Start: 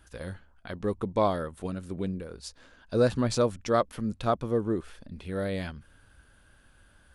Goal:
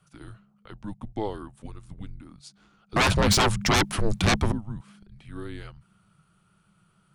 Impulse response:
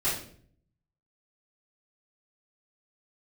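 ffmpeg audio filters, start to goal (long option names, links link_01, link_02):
-filter_complex "[0:a]asettb=1/sr,asplit=3[link_01][link_02][link_03];[link_01]atrim=end=2.964[link_04];[link_02]atrim=start=2.96:end=4.52,asetpts=PTS-STARTPTS,afade=type=in:duration=0.004:curve=qsin,afade=type=out:start_time=1.556:duration=0.004:curve=qsin,aeval=exprs='0.282*sin(PI/2*7.08*val(0)/0.282)':channel_layout=same[link_05];[link_03]atrim=start=4.516[link_06];[link_04][link_05]acrossfade=duration=0.004:curve1=hsin:curve2=qsin[link_07];[link_07][link_06]acrossfade=duration=0.004:curve1=qsin:curve2=hsin,afreqshift=-210,volume=-5.5dB"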